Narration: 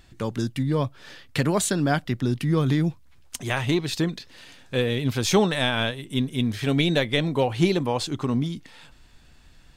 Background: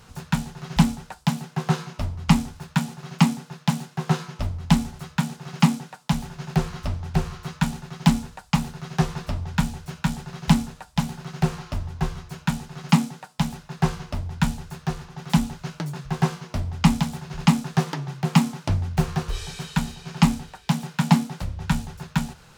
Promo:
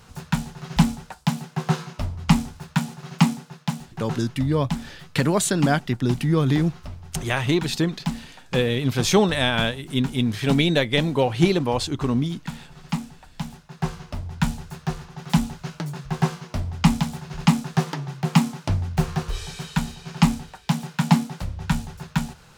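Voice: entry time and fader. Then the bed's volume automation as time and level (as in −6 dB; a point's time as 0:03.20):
3.80 s, +2.0 dB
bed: 0:03.27 0 dB
0:04.20 −9 dB
0:13.19 −9 dB
0:14.51 0 dB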